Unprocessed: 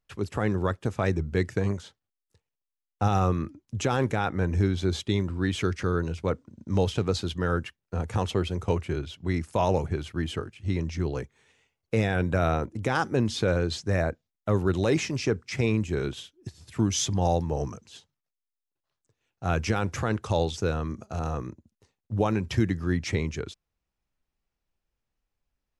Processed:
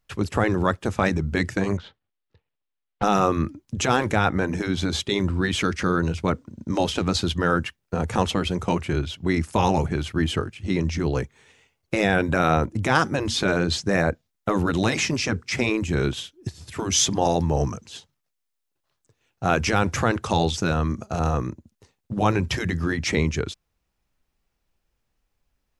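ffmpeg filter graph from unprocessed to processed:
-filter_complex "[0:a]asettb=1/sr,asplit=3[s0][s1][s2];[s0]atrim=end=1.774[s3];[s1]atrim=start=1.77:end=3.03,asetpts=PTS-STARTPTS,afade=t=in:d=0.004:c=qsin,afade=t=out:st=1.256:d=0.004:c=qsin,lowpass=f=3800:w=0.5412,lowpass=f=3800:w=1.3066,aeval=exprs='(tanh(31.6*val(0)+0.55)-tanh(0.55))/31.6':c=same[s4];[s2]atrim=start=3.026[s5];[s3][s4]acrossfade=d=0.004:c1=hsin:c2=qsin[s6];[s6][s5]acrossfade=d=0.004:c1=qsin:c2=hsin,afftfilt=real='re*lt(hypot(re,im),0.355)':imag='im*lt(hypot(re,im),0.355)':win_size=1024:overlap=0.75,adynamicequalizer=threshold=0.00794:dfrequency=420:dqfactor=2:tfrequency=420:tqfactor=2:attack=5:release=100:ratio=0.375:range=2:mode=cutabove:tftype=bell,volume=2.51"

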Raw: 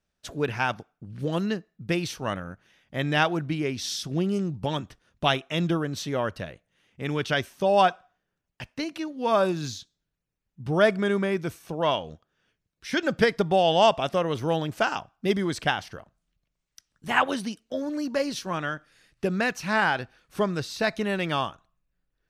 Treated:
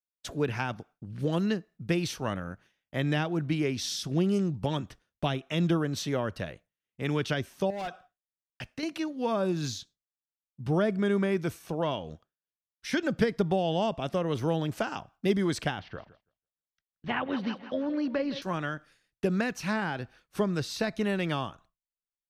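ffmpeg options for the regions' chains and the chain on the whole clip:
-filter_complex "[0:a]asettb=1/sr,asplit=3[s0][s1][s2];[s0]atrim=end=7.704[s3];[s1]atrim=start=7.7:end=8.83,asetpts=PTS-STARTPTS,afade=t=in:d=0.004:c=qsin,afade=t=out:st=1.126:d=0.004:c=qsin,bandreject=f=960:w=6,asoftclip=type=hard:threshold=0.106,acompressor=threshold=0.0224:ratio=3:attack=3.2:release=140:knee=1:detection=peak[s4];[s2]atrim=start=8.826[s5];[s3][s4]acrossfade=d=0.004:c1=hsin:c2=qsin[s6];[s6][s5]acrossfade=d=0.004:c1=qsin:c2=hsin,asettb=1/sr,asplit=3[s7][s8][s9];[s7]atrim=end=15.794[s10];[s8]atrim=start=15.79:end=18.42,asetpts=PTS-STARTPTS,afade=t=in:d=0.004:c=qsin,afade=t=out:st=2.626:d=0.004:c=qsin,lowpass=f=3800:w=0.5412,lowpass=f=3800:w=1.3066,aecho=1:1:164|328|492|656:0.15|0.0733|0.0359|0.0176,atrim=end_sample=115983[s11];[s9]atrim=start=18.416[s12];[s10][s11]acrossfade=d=0.004:c1=hsin:c2=qsin[s13];[s13][s12]acrossfade=d=0.004:c1=qsin:c2=hsin,agate=range=0.0224:threshold=0.00355:ratio=3:detection=peak,acrossover=split=390[s14][s15];[s15]acompressor=threshold=0.0316:ratio=6[s16];[s14][s16]amix=inputs=2:normalize=0"

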